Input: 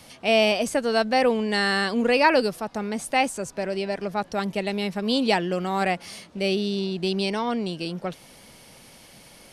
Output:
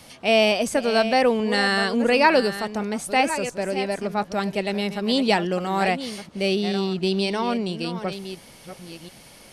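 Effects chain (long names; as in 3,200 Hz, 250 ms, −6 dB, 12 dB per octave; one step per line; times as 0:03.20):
delay that plays each chunk backwards 699 ms, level −11 dB
level +1.5 dB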